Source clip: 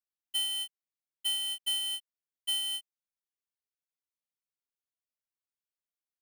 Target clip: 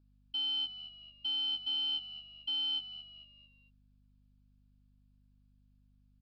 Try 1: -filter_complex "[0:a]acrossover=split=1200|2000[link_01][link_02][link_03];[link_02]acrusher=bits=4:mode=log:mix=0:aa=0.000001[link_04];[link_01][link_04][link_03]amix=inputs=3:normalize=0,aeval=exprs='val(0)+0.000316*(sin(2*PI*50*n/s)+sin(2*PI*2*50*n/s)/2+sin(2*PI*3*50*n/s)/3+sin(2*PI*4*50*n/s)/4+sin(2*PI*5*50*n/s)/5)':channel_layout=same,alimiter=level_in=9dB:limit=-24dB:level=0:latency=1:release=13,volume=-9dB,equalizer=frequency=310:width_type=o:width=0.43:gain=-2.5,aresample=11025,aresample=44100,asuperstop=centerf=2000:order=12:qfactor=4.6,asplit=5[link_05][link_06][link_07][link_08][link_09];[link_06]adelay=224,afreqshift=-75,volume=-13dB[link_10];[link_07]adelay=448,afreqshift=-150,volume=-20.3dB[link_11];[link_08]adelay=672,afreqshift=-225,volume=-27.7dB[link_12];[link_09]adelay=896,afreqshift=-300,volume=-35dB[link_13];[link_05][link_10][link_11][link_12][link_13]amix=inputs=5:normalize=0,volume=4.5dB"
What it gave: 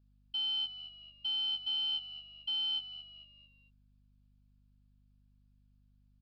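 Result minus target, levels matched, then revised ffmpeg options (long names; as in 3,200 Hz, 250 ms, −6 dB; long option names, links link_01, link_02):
250 Hz band −5.5 dB
-filter_complex "[0:a]acrossover=split=1200|2000[link_01][link_02][link_03];[link_02]acrusher=bits=4:mode=log:mix=0:aa=0.000001[link_04];[link_01][link_04][link_03]amix=inputs=3:normalize=0,aeval=exprs='val(0)+0.000316*(sin(2*PI*50*n/s)+sin(2*PI*2*50*n/s)/2+sin(2*PI*3*50*n/s)/3+sin(2*PI*4*50*n/s)/4+sin(2*PI*5*50*n/s)/5)':channel_layout=same,alimiter=level_in=9dB:limit=-24dB:level=0:latency=1:release=13,volume=-9dB,equalizer=frequency=310:width_type=o:width=0.43:gain=5.5,aresample=11025,aresample=44100,asuperstop=centerf=2000:order=12:qfactor=4.6,asplit=5[link_05][link_06][link_07][link_08][link_09];[link_06]adelay=224,afreqshift=-75,volume=-13dB[link_10];[link_07]adelay=448,afreqshift=-150,volume=-20.3dB[link_11];[link_08]adelay=672,afreqshift=-225,volume=-27.7dB[link_12];[link_09]adelay=896,afreqshift=-300,volume=-35dB[link_13];[link_05][link_10][link_11][link_12][link_13]amix=inputs=5:normalize=0,volume=4.5dB"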